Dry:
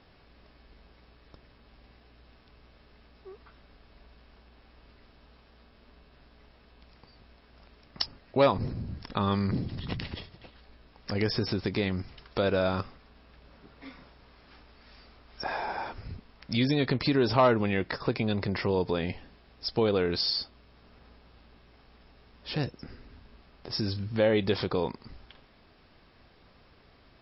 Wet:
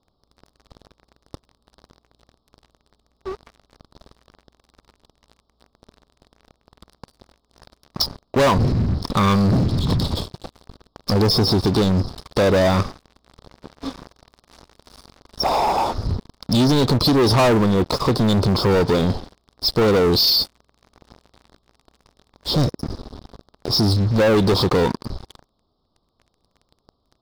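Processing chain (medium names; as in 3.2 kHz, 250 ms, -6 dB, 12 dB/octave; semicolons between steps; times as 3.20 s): Chebyshev band-stop 1.2–3.6 kHz, order 3; waveshaping leveller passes 5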